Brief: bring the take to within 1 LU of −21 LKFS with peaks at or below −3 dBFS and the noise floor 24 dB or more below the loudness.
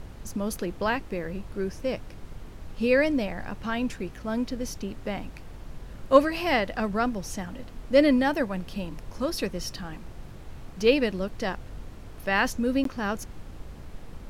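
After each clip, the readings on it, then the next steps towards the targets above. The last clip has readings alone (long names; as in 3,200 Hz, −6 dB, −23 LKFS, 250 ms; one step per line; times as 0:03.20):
number of dropouts 1; longest dropout 13 ms; background noise floor −44 dBFS; target noise floor −52 dBFS; integrated loudness −27.5 LKFS; sample peak −5.5 dBFS; target loudness −21.0 LKFS
→ repair the gap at 0:12.84, 13 ms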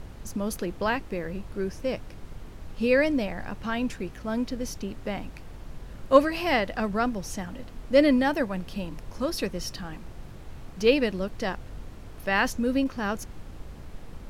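number of dropouts 0; background noise floor −44 dBFS; target noise floor −52 dBFS
→ noise reduction from a noise print 8 dB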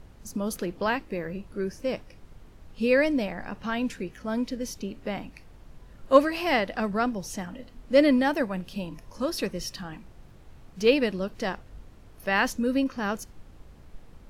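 background noise floor −51 dBFS; target noise floor −52 dBFS
→ noise reduction from a noise print 6 dB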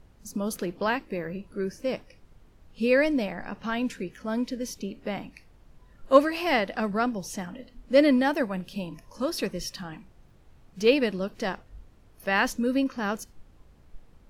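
background noise floor −56 dBFS; integrated loudness −27.5 LKFS; sample peak −5.5 dBFS; target loudness −21.0 LKFS
→ level +6.5 dB
brickwall limiter −3 dBFS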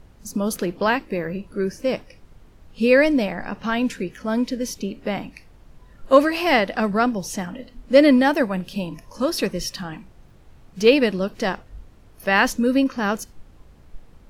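integrated loudness −21.0 LKFS; sample peak −3.0 dBFS; background noise floor −50 dBFS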